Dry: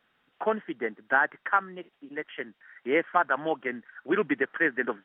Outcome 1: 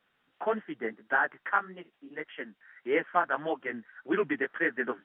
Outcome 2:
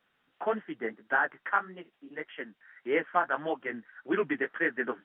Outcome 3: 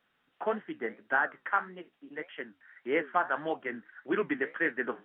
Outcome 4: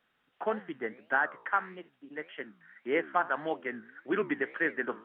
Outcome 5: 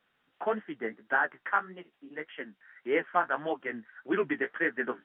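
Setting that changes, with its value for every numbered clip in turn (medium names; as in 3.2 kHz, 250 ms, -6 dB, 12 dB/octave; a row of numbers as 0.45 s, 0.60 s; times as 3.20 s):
flange, regen: +4%, -17%, -65%, +84%, +26%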